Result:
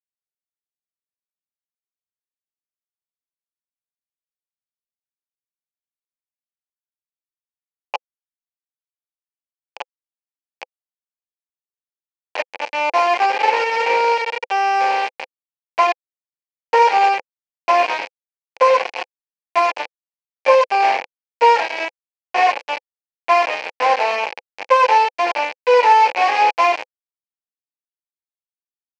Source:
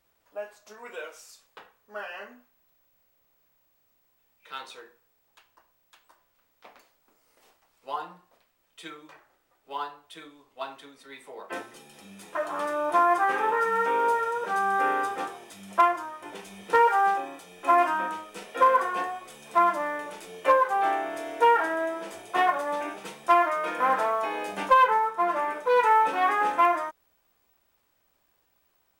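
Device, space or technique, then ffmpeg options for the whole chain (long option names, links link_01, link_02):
hand-held game console: -af "acrusher=bits=3:mix=0:aa=0.000001,highpass=490,equalizer=frequency=510:width_type=q:width=4:gain=9,equalizer=frequency=830:width_type=q:width=4:gain=9,equalizer=frequency=1300:width_type=q:width=4:gain=-10,equalizer=frequency=2400:width_type=q:width=4:gain=9,equalizer=frequency=3600:width_type=q:width=4:gain=-10,lowpass=frequency=4600:width=0.5412,lowpass=frequency=4600:width=1.3066,volume=4dB"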